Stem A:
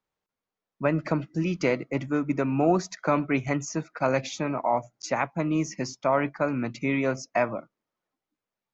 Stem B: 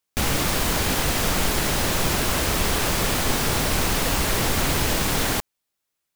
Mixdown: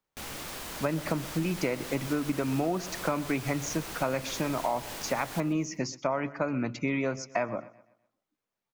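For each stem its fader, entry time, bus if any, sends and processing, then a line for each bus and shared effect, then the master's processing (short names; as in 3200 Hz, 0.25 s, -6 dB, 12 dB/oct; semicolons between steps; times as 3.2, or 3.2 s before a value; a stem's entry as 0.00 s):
+0.5 dB, 0.00 s, no send, echo send -21.5 dB, dry
-15.5 dB, 0.00 s, no send, echo send -14 dB, low shelf 210 Hz -9 dB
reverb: off
echo: feedback echo 0.126 s, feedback 38%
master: compressor, threshold -25 dBFS, peak gain reduction 9.5 dB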